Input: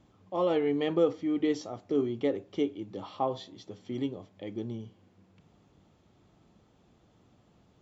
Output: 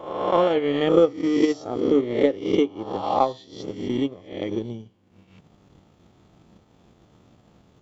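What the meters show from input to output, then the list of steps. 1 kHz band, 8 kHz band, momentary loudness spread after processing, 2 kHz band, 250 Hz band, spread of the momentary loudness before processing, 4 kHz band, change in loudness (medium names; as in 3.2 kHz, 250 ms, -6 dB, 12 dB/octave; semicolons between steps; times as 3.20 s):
+11.5 dB, no reading, 13 LU, +9.5 dB, +8.0 dB, 14 LU, +9.0 dB, +9.0 dB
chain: reverse spectral sustain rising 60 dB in 1.19 s; transient shaper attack +11 dB, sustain -9 dB; trim +4 dB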